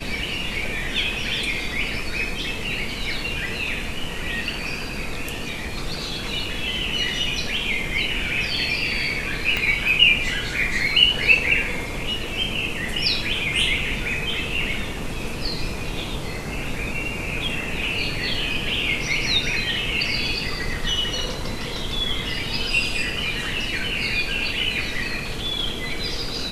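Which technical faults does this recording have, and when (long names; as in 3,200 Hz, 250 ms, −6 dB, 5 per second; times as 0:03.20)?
0:09.57: click −9 dBFS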